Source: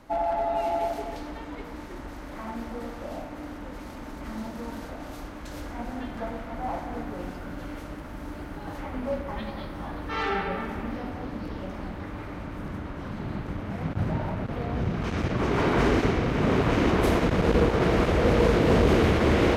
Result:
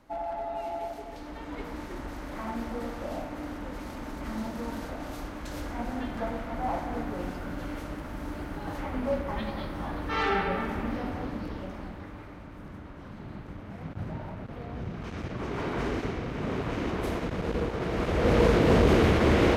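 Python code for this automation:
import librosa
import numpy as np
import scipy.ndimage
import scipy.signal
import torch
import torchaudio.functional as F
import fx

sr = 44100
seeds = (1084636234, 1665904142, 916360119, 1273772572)

y = fx.gain(x, sr, db=fx.line((1.06, -7.5), (1.61, 1.0), (11.18, 1.0), (12.4, -8.5), (17.88, -8.5), (18.36, -0.5)))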